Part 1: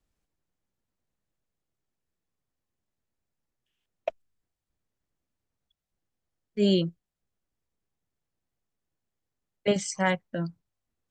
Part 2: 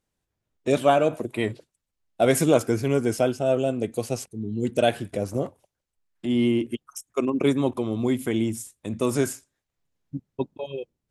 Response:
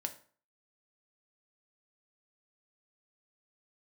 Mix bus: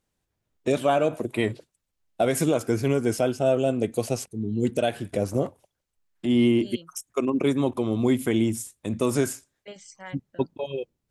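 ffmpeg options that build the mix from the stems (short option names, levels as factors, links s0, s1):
-filter_complex "[0:a]lowshelf=f=370:g=-11.5,volume=0.211[s0];[1:a]volume=1.26[s1];[s0][s1]amix=inputs=2:normalize=0,alimiter=limit=0.251:level=0:latency=1:release=238"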